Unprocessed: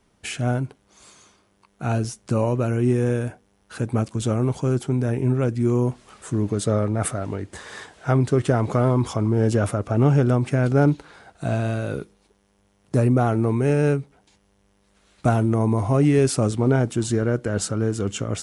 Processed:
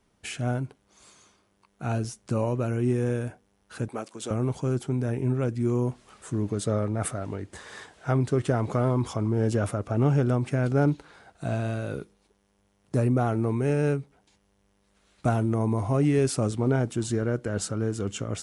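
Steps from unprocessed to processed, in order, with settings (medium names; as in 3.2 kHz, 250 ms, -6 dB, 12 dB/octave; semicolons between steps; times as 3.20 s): 3.88–4.31 s: high-pass 380 Hz 12 dB/octave; trim -5 dB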